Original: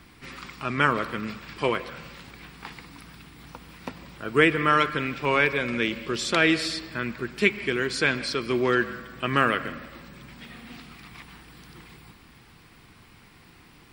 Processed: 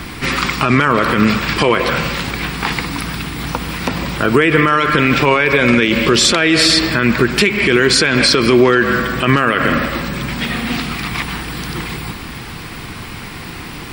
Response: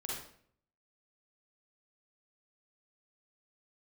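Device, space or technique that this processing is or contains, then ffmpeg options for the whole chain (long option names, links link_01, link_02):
loud club master: -af "acompressor=threshold=-28dB:ratio=2,asoftclip=type=hard:threshold=-14dB,alimiter=level_in=24.5dB:limit=-1dB:release=50:level=0:latency=1,volume=-1dB"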